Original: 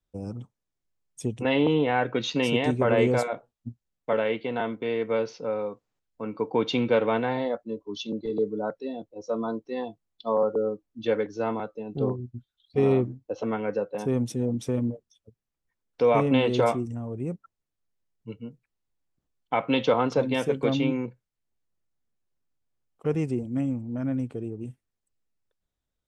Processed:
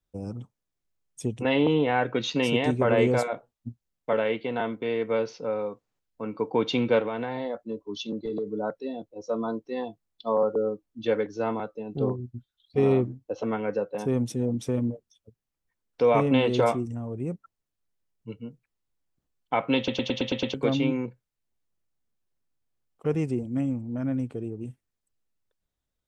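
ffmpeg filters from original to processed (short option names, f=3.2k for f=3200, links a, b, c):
-filter_complex "[0:a]asettb=1/sr,asplit=3[a][b][c];[a]atrim=end=6.994[d];[b]atrim=start=6.99:end=8.49,asetpts=PTS-STARTPTS,afade=t=in:d=0.004:c=qsin,afade=t=out:st=1.496:d=0.004:c=qsin,acompressor=threshold=-26dB:ratio=6:attack=3.2:release=140:knee=1:detection=peak[e];[c]atrim=start=8.486[f];[d][e]acrossfade=d=0.004:c1=hsin:c2=qsin[g];[g][f]acrossfade=d=0.004:c1=qsin:c2=hsin,asplit=8[h][i][j][k][l][m][n][o];[h]atrim=end=19.882[p];[i]atrim=start=19.768:end=19.882[q];[j]atrim=start=19.768:end=19.882[r];[k]atrim=start=19.768:end=19.882[s];[l]atrim=start=19.768:end=19.882[t];[m]atrim=start=19.768:end=19.882[u];[n]atrim=start=19.768:end=19.882[v];[o]atrim=start=20.538[w];[p][q]acrossfade=d=0.004:c1=hsin:c2=hsin[x];[x][r]acrossfade=d=0.004:c1=hsin:c2=hsin[y];[y][s]acrossfade=d=0.004:c1=hsin:c2=hsin[z];[z][t]acrossfade=d=0.004:c1=hsin:c2=hsin[aa];[aa][u]acrossfade=d=0.004:c1=hsin:c2=hsin[ab];[ab][v]acrossfade=d=0.004:c1=hsin:c2=hsin[ac];[ac][w]acrossfade=d=0.004:c1=hsin:c2=hsin"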